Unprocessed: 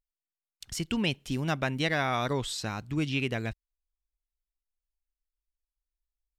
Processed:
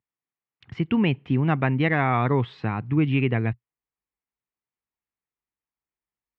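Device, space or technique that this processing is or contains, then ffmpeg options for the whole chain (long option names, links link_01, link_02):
bass cabinet: -af "highpass=frequency=90:width=0.5412,highpass=frequency=90:width=1.3066,equalizer=frequency=120:width_type=q:width=4:gain=4,equalizer=frequency=590:width_type=q:width=4:gain=-8,equalizer=frequency=1500:width_type=q:width=4:gain=-6,lowpass=frequency=2200:width=0.5412,lowpass=frequency=2200:width=1.3066,volume=8.5dB"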